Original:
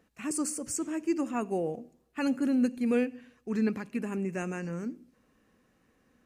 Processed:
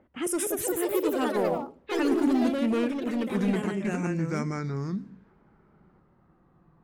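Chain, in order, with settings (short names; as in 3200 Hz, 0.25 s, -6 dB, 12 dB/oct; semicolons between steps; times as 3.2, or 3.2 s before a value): speed glide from 117% -> 66%; in parallel at -1 dB: compressor, threshold -39 dBFS, peak gain reduction 16 dB; on the sum: hard clip -23.5 dBFS, distortion -14 dB; low-pass opened by the level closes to 1300 Hz, open at -26 dBFS; echoes that change speed 0.243 s, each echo +3 st, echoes 3; gain +1 dB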